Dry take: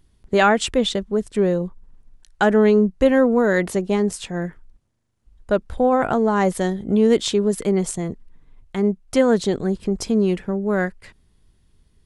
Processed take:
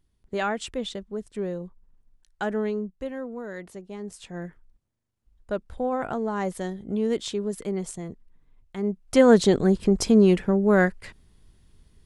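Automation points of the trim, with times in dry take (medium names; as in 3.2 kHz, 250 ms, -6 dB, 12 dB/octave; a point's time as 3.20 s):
2.57 s -11.5 dB
3.14 s -18.5 dB
3.93 s -18.5 dB
4.34 s -9.5 dB
8.76 s -9.5 dB
9.30 s +2 dB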